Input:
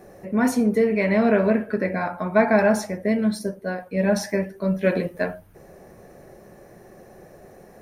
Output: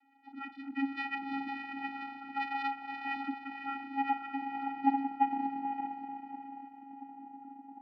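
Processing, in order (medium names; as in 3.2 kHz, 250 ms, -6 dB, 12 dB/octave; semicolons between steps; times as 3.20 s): formants replaced by sine waves; band-pass sweep 2.6 kHz -> 550 Hz, 2.41–6.35 s; echo that smears into a reverb 544 ms, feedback 41%, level -5 dB; vocoder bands 8, square 274 Hz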